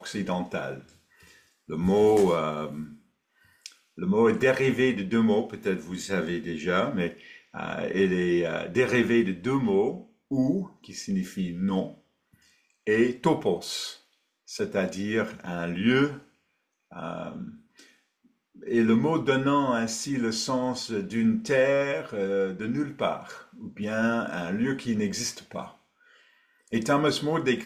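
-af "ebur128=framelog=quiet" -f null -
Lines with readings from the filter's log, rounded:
Integrated loudness:
  I:         -26.5 LUFS
  Threshold: -37.7 LUFS
Loudness range:
  LRA:         4.7 LU
  Threshold: -47.6 LUFS
  LRA low:   -30.3 LUFS
  LRA high:  -25.6 LUFS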